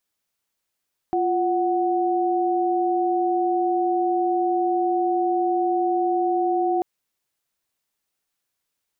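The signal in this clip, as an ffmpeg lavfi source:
ffmpeg -f lavfi -i "aevalsrc='0.0841*(sin(2*PI*349.23*t)+sin(2*PI*739.99*t))':duration=5.69:sample_rate=44100" out.wav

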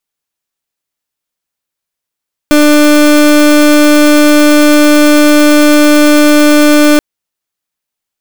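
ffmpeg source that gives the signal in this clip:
ffmpeg -f lavfi -i "aevalsrc='0.562*(2*lt(mod(297*t,1),0.31)-1)':duration=4.48:sample_rate=44100" out.wav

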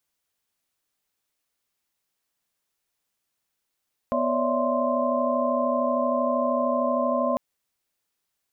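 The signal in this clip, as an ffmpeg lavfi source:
ffmpeg -f lavfi -i "aevalsrc='0.0422*(sin(2*PI*246.94*t)+sin(2*PI*554.37*t)+sin(2*PI*587.33*t)+sin(2*PI*659.26*t)+sin(2*PI*1046.5*t))':duration=3.25:sample_rate=44100" out.wav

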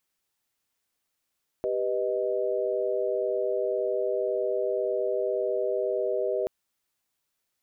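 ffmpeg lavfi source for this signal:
ffmpeg -f lavfi -i "aevalsrc='0.0355*(sin(2*PI*392*t)+sin(2*PI*493.88*t)+sin(2*PI*622.25*t))':duration=4.83:sample_rate=44100" out.wav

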